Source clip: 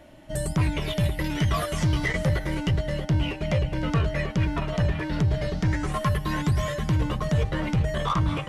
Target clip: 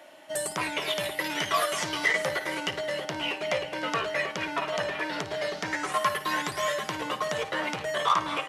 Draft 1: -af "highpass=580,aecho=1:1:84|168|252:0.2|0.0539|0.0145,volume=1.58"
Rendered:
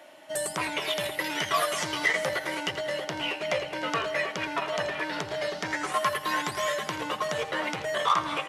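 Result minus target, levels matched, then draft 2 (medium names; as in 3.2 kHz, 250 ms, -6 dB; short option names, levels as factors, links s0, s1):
echo 29 ms late
-af "highpass=580,aecho=1:1:55|110|165:0.2|0.0539|0.0145,volume=1.58"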